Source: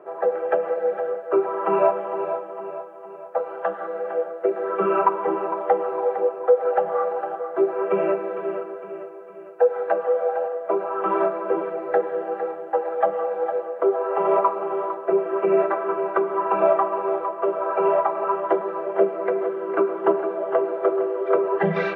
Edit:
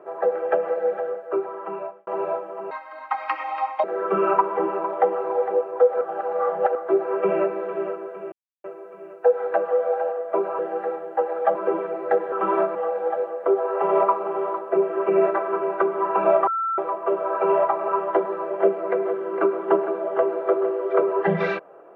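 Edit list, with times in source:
0.87–2.07 fade out
2.71–4.52 speed 160%
6.69–7.43 reverse
9 insert silence 0.32 s
10.95–11.38 swap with 12.15–13.11
16.83–17.14 bleep 1340 Hz -21.5 dBFS

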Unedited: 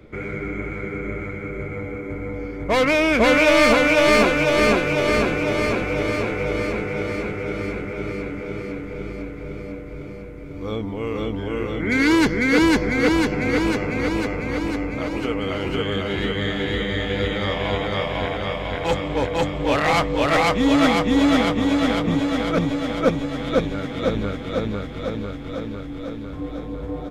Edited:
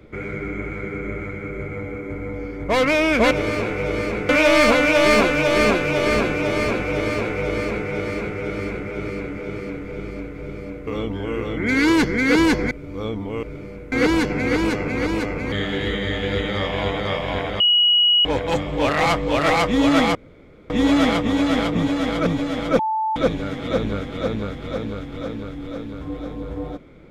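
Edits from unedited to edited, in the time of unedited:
5.92–6.9 copy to 3.31
9.89–10.38 swap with 11.1–12.94
14.54–16.39 cut
18.47–19.12 bleep 2910 Hz -12.5 dBFS
21.02 insert room tone 0.55 s
23.11–23.48 bleep 877 Hz -19 dBFS

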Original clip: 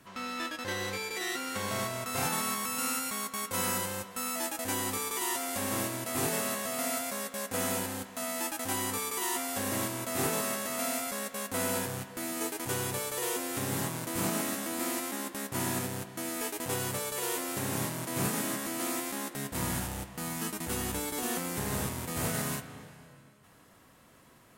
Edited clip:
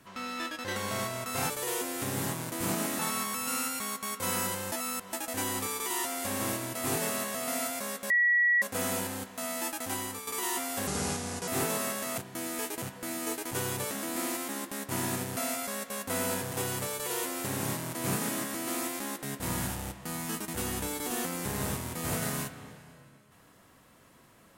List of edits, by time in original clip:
0.76–1.56 cut
4.03–4.44 reverse
7.41 add tone 1930 Hz -21 dBFS 0.52 s
8.43–9.06 fade out equal-power, to -10 dB
9.66–10.11 speed 74%
10.81–11.96 swap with 16–16.64
13.05–14.54 move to 2.3

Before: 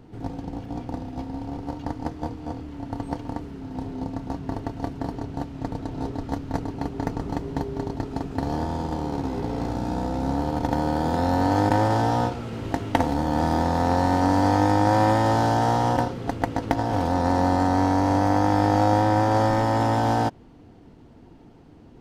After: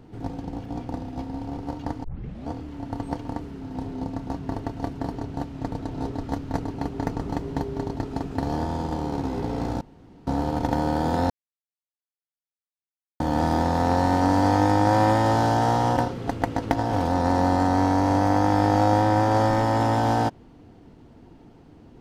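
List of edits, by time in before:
2.04 tape start 0.45 s
9.81–10.27 room tone
11.3–13.2 mute

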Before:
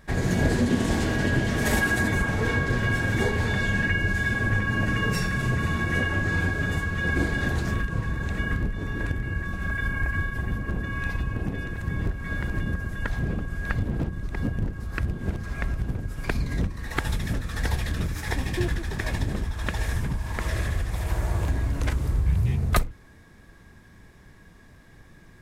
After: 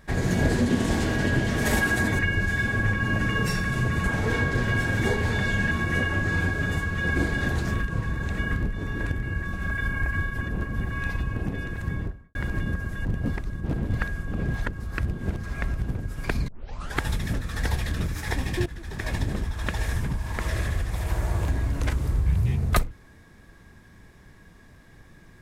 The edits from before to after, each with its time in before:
2.19–3.86 move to 5.71
10.41–10.91 reverse
11.85–12.35 studio fade out
13.05–14.68 reverse
16.48 tape start 0.50 s
18.66–19.15 fade in, from -17 dB

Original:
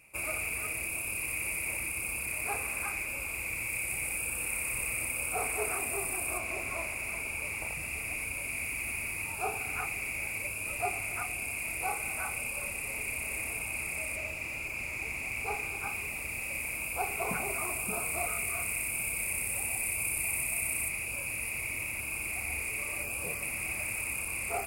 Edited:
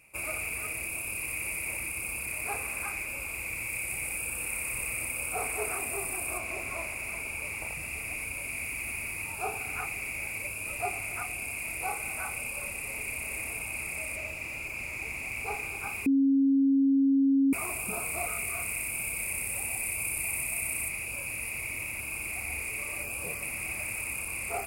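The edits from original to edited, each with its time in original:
16.06–17.53 bleep 273 Hz -20 dBFS

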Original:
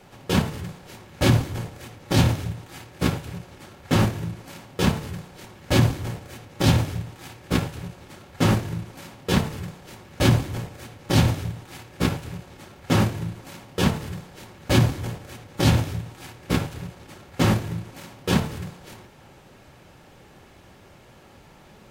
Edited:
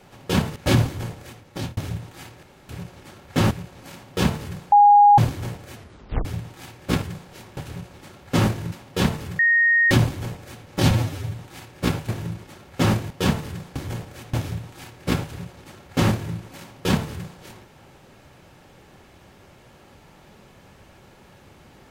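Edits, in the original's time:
0.56–1.11 move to 7.64
1.79–2.32 fade out
2.98–3.24 room tone
4.06–4.41 swap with 12.26–12.54
5.34–5.8 bleep 821 Hz -8.5 dBFS
6.37 tape stop 0.50 s
8.79–9.04 cut
9.71–10.23 bleep 1860 Hz -14 dBFS
11.23–11.52 stretch 1.5×
13.21–13.68 cut
14.33–14.89 cut
15.47–15.76 cut

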